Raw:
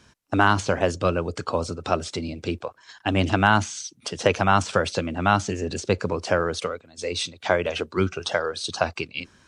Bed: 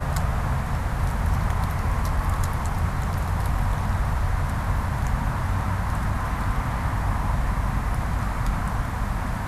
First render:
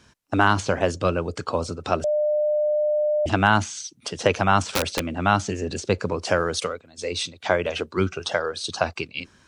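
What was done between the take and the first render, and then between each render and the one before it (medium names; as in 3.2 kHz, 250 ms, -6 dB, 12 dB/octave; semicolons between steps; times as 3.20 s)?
2.04–3.26 s: bleep 601 Hz -18.5 dBFS; 4.67–5.09 s: integer overflow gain 14.5 dB; 6.25–6.73 s: treble shelf 3.9 kHz +8 dB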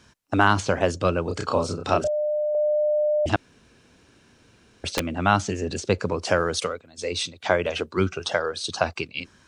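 1.24–2.55 s: doubling 31 ms -2.5 dB; 3.36–4.84 s: room tone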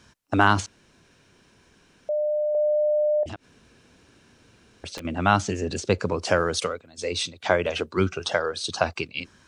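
0.66–2.09 s: room tone; 3.23–5.05 s: compression 8:1, threshold -33 dBFS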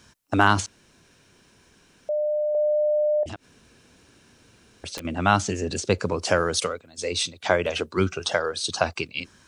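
treble shelf 7 kHz +8 dB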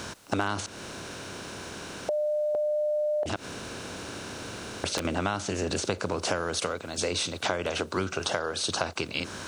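spectral levelling over time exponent 0.6; compression 5:1, threshold -26 dBFS, peak gain reduction 14 dB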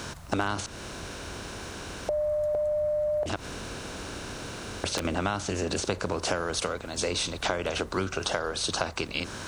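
add bed -22.5 dB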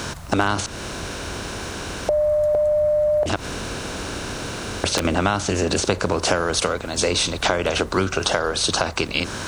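trim +8.5 dB; peak limiter -3 dBFS, peak gain reduction 2.5 dB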